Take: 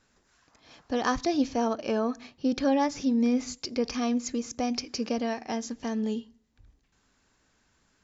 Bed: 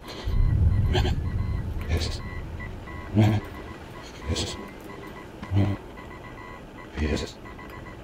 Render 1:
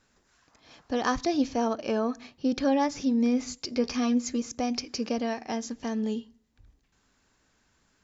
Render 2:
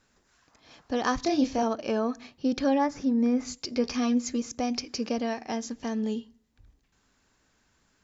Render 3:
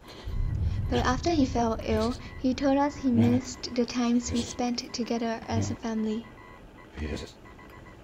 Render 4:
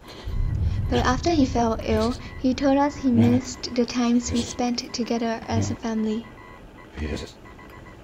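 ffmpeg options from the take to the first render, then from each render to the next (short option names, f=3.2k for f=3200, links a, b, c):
-filter_complex "[0:a]asettb=1/sr,asplit=3[a][b][c];[a]atrim=end=3.674[d];[b]atrim=start=3.67:end=4.42,asetpts=PTS-STARTPTS,afade=t=in:d=0.004:c=qsin,afade=t=out:st=0.746:d=0.004:c=qsin,asplit=2[e][f];[f]adelay=12,volume=-7dB[g];[e][g]amix=inputs=2:normalize=0,atrim=end_sample=33075[h];[c]atrim=start=4.416[i];[d][h]acrossfade=d=0.004:c1=hsin:c2=qsin[j];[j][i]acrossfade=d=0.004:c1=qsin:c2=hsin"
-filter_complex "[0:a]asettb=1/sr,asplit=3[a][b][c];[a]atrim=end=1.204[d];[b]atrim=start=1.2:end=1.63,asetpts=PTS-STARTPTS,afade=t=in:d=0.004:c=qsin,afade=t=out:st=0.426:d=0.004:c=qsin,asplit=2[e][f];[f]adelay=27,volume=-4dB[g];[e][g]amix=inputs=2:normalize=0,atrim=end_sample=18963[h];[c]atrim=start=1.626[i];[d][h]acrossfade=d=0.004:c1=hsin:c2=qsin[j];[j][i]acrossfade=d=0.004:c1=qsin:c2=hsin,asettb=1/sr,asplit=3[k][l][m];[k]atrim=end=2.784[n];[l]atrim=start=2.78:end=3.45,asetpts=PTS-STARTPTS,afade=t=in:d=0.004:c=qsin,afade=t=out:st=0.666:d=0.004:c=qsin,highshelf=f=2.2k:t=q:w=1.5:g=-6.5[o];[m]atrim=start=3.446[p];[n][o]acrossfade=d=0.004:c1=hsin:c2=qsin[q];[q][p]acrossfade=d=0.004:c1=qsin:c2=hsin"
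-filter_complex "[1:a]volume=-7.5dB[a];[0:a][a]amix=inputs=2:normalize=0"
-af "volume=4.5dB"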